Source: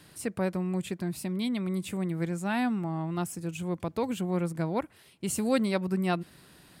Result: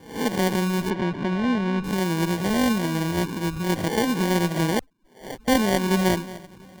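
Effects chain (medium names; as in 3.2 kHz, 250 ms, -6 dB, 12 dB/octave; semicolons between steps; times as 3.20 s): reverse spectral sustain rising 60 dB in 0.55 s; in parallel at 0 dB: peak limiter -23 dBFS, peak gain reduction 11.5 dB; on the sum: Chebyshev shaper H 2 -9 dB, 6 -27 dB, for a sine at -9 dBFS; on a send: echo whose repeats swap between lows and highs 230 ms, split 1.3 kHz, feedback 58%, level -14 dB; on the sum: loudest bins only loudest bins 32; dynamic bell 310 Hz, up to +5 dB, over -34 dBFS, Q 1; 4.79–5.48 s: inverse Chebyshev band-stop 110–760 Hz, stop band 50 dB; sample-and-hold 34×; 0.90–1.84 s: low-pass 3 kHz 12 dB/octave; trim -2 dB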